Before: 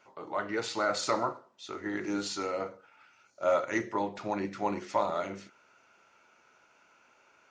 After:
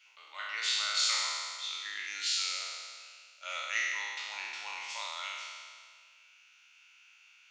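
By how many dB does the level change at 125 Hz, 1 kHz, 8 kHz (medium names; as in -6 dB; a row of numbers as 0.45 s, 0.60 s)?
under -40 dB, -9.0 dB, +7.5 dB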